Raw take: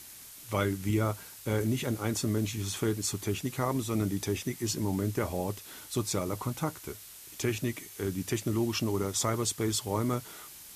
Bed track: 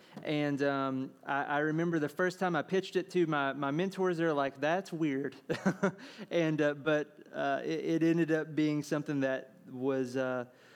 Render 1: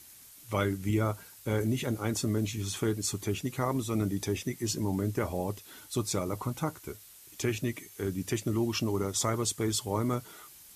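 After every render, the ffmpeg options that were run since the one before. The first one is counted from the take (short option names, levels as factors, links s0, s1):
-af "afftdn=nr=6:nf=-49"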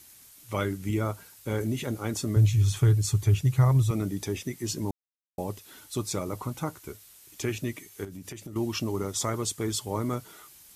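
-filter_complex "[0:a]asettb=1/sr,asplit=3[s0][s1][s2];[s0]atrim=end=2.364[s3];[s1]atrim=start=2.36:end=3.91,asetpts=PTS-STARTPTS,afade=t=in:d=0.004:c=qsin,afade=t=out:st=1.546:d=0.004:c=qsin,lowshelf=f=170:t=q:w=3:g=9.5[s4];[s2]atrim=start=3.906[s5];[s3][s4]acrossfade=d=0.004:c1=hsin:c2=qsin[s6];[s6][s5]acrossfade=d=0.004:c1=qsin:c2=hsin,asettb=1/sr,asplit=3[s7][s8][s9];[s7]atrim=end=8.044[s10];[s8]atrim=start=8.04:end=8.56,asetpts=PTS-STARTPTS,afade=t=in:d=0.004:c=qsin,afade=t=out:st=0.516:d=0.004:c=qsin,acompressor=threshold=0.0158:ratio=12:attack=3.2:release=140:knee=1:detection=peak[s11];[s9]atrim=start=8.556[s12];[s10][s11]acrossfade=d=0.004:c1=hsin:c2=qsin[s13];[s13][s12]acrossfade=d=0.004:c1=qsin:c2=hsin,asplit=3[s14][s15][s16];[s14]atrim=end=4.91,asetpts=PTS-STARTPTS,afade=t=out:st=4.906:d=0.004:c=hsin[s17];[s15]atrim=start=4.91:end=5.38,asetpts=PTS-STARTPTS,volume=0[s18];[s16]atrim=start=5.38,asetpts=PTS-STARTPTS,afade=t=in:d=0.004:c=hsin[s19];[s17][s18][s19]concat=n=3:v=0:a=1"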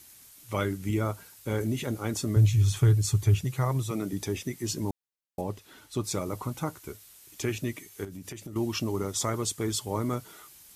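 -filter_complex "[0:a]asettb=1/sr,asplit=3[s0][s1][s2];[s0]atrim=end=3.444[s3];[s1]atrim=start=3.44:end=4.13,asetpts=PTS-STARTPTS,afade=t=in:d=0.004:c=qsin,afade=t=out:st=0.686:d=0.004:c=qsin,highpass=190[s4];[s2]atrim=start=4.126[s5];[s3][s4]acrossfade=d=0.004:c1=hsin:c2=qsin[s6];[s6][s5]acrossfade=d=0.004:c1=qsin:c2=hsin,asettb=1/sr,asplit=3[s7][s8][s9];[s7]atrim=end=5.414[s10];[s8]atrim=start=5.41:end=6.04,asetpts=PTS-STARTPTS,afade=t=in:d=0.004:c=qsin,afade=t=out:st=0.626:d=0.004:c=qsin,aemphasis=mode=reproduction:type=cd[s11];[s9]atrim=start=6.036[s12];[s10][s11]acrossfade=d=0.004:c1=hsin:c2=qsin[s13];[s13][s12]acrossfade=d=0.004:c1=qsin:c2=hsin"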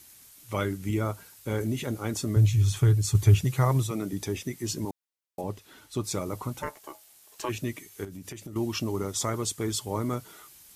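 -filter_complex "[0:a]asettb=1/sr,asplit=3[s0][s1][s2];[s0]atrim=end=4.854[s3];[s1]atrim=start=4.85:end=5.44,asetpts=PTS-STARTPTS,afade=t=in:d=0.004:c=qsin,afade=t=out:st=0.586:d=0.004:c=qsin,highpass=f=280:p=1[s4];[s2]atrim=start=5.436[s5];[s3][s4]acrossfade=d=0.004:c1=hsin:c2=qsin[s6];[s6][s5]acrossfade=d=0.004:c1=qsin:c2=hsin,asplit=3[s7][s8][s9];[s7]afade=t=out:st=6.61:d=0.02[s10];[s8]aeval=exprs='val(0)*sin(2*PI*740*n/s)':c=same,afade=t=in:st=6.61:d=0.02,afade=t=out:st=7.48:d=0.02[s11];[s9]afade=t=in:st=7.48:d=0.02[s12];[s10][s11][s12]amix=inputs=3:normalize=0,asplit=3[s13][s14][s15];[s13]atrim=end=3.152[s16];[s14]atrim=start=3.148:end=3.872,asetpts=PTS-STARTPTS,volume=1.58[s17];[s15]atrim=start=3.868[s18];[s16][s17]acrossfade=d=0.004:c1=hsin:c2=hsin[s19];[s19][s18]acrossfade=d=0.004:c1=hsin:c2=hsin"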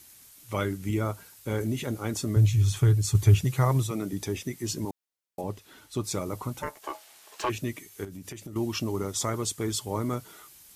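-filter_complex "[0:a]asettb=1/sr,asplit=3[s0][s1][s2];[s0]atrim=end=6.824[s3];[s1]atrim=start=6.82:end=7.5,asetpts=PTS-STARTPTS,afade=t=in:d=0.004:c=qsin,afade=t=out:st=0.676:d=0.004:c=qsin,asplit=2[s4][s5];[s5]highpass=f=720:p=1,volume=7.94,asoftclip=type=tanh:threshold=0.126[s6];[s4][s6]amix=inputs=2:normalize=0,lowpass=f=2200:p=1,volume=0.501[s7];[s2]atrim=start=7.496[s8];[s3][s7]acrossfade=d=0.004:c1=hsin:c2=qsin[s9];[s9][s8]acrossfade=d=0.004:c1=qsin:c2=hsin"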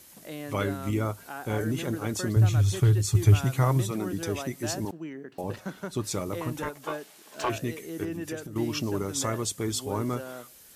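-filter_complex "[1:a]volume=0.473[s0];[0:a][s0]amix=inputs=2:normalize=0"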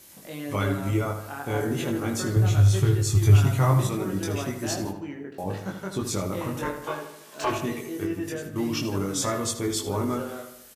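-filter_complex "[0:a]asplit=2[s0][s1];[s1]adelay=21,volume=0.75[s2];[s0][s2]amix=inputs=2:normalize=0,asplit=2[s3][s4];[s4]adelay=78,lowpass=f=3700:p=1,volume=0.398,asplit=2[s5][s6];[s6]adelay=78,lowpass=f=3700:p=1,volume=0.54,asplit=2[s7][s8];[s8]adelay=78,lowpass=f=3700:p=1,volume=0.54,asplit=2[s9][s10];[s10]adelay=78,lowpass=f=3700:p=1,volume=0.54,asplit=2[s11][s12];[s12]adelay=78,lowpass=f=3700:p=1,volume=0.54,asplit=2[s13][s14];[s14]adelay=78,lowpass=f=3700:p=1,volume=0.54[s15];[s5][s7][s9][s11][s13][s15]amix=inputs=6:normalize=0[s16];[s3][s16]amix=inputs=2:normalize=0"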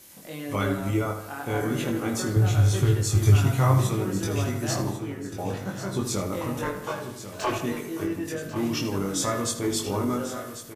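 -filter_complex "[0:a]asplit=2[s0][s1];[s1]adelay=25,volume=0.266[s2];[s0][s2]amix=inputs=2:normalize=0,asplit=2[s3][s4];[s4]aecho=0:1:1093|2186|3279|4372:0.251|0.108|0.0464|0.02[s5];[s3][s5]amix=inputs=2:normalize=0"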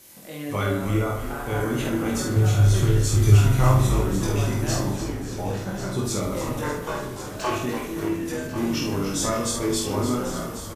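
-filter_complex "[0:a]asplit=2[s0][s1];[s1]adelay=48,volume=0.631[s2];[s0][s2]amix=inputs=2:normalize=0,asplit=8[s3][s4][s5][s6][s7][s8][s9][s10];[s4]adelay=293,afreqshift=-76,volume=0.316[s11];[s5]adelay=586,afreqshift=-152,volume=0.186[s12];[s6]adelay=879,afreqshift=-228,volume=0.11[s13];[s7]adelay=1172,afreqshift=-304,volume=0.0653[s14];[s8]adelay=1465,afreqshift=-380,volume=0.0385[s15];[s9]adelay=1758,afreqshift=-456,volume=0.0226[s16];[s10]adelay=2051,afreqshift=-532,volume=0.0133[s17];[s3][s11][s12][s13][s14][s15][s16][s17]amix=inputs=8:normalize=0"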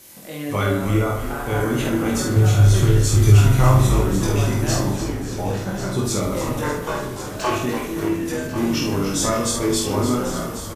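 -af "volume=1.58,alimiter=limit=0.708:level=0:latency=1"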